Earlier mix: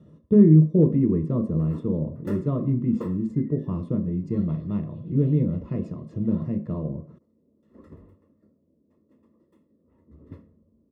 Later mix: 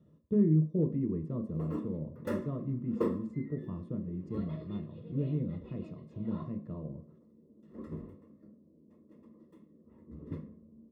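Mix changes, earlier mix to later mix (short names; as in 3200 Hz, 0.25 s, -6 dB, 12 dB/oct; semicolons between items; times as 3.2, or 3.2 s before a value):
speech -11.5 dB; background: send on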